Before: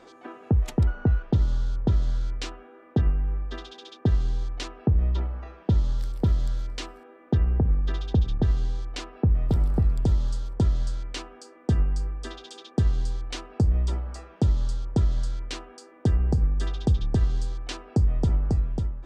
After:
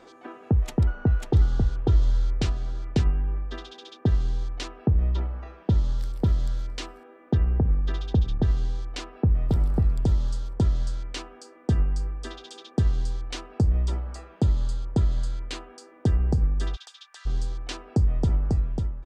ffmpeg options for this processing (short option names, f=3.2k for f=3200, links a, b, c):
-filter_complex "[0:a]asplit=3[a][b][c];[a]afade=t=out:st=1.19:d=0.02[d];[b]aecho=1:1:543:0.631,afade=t=in:st=1.19:d=0.02,afade=t=out:st=3.39:d=0.02[e];[c]afade=t=in:st=3.39:d=0.02[f];[d][e][f]amix=inputs=3:normalize=0,asettb=1/sr,asplit=3[g][h][i];[g]atrim=end=14.154[j];[h]atrim=start=14.15:end=15.7,asetpts=PTS-STARTPTS,afade=t=in:d=0.004:c=qsin,afade=t=out:st=1.546:d=0.004:c=qsin,bandreject=f=5.6k:w=9.6[k];[i]atrim=start=15.696[l];[j][k]acrossfade=d=0.004:c1=hsin:c2=qsin[m];[m][l]acrossfade=d=0.004:c1=qsin:c2=hsin,asplit=3[n][o][p];[n]afade=t=out:st=16.75:d=0.02[q];[o]highpass=f=1.3k:w=0.5412,highpass=f=1.3k:w=1.3066,afade=t=in:st=16.75:d=0.02,afade=t=out:st=17.25:d=0.02[r];[p]afade=t=in:st=17.25:d=0.02[s];[q][r][s]amix=inputs=3:normalize=0"